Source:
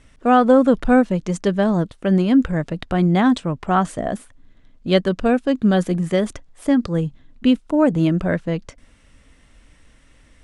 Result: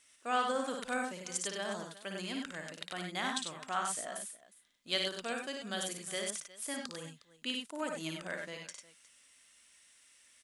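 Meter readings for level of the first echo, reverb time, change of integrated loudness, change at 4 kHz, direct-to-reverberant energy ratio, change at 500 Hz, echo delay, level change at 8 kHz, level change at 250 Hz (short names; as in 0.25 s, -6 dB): -5.0 dB, none, -18.5 dB, -4.0 dB, none, -20.5 dB, 56 ms, +2.5 dB, -26.5 dB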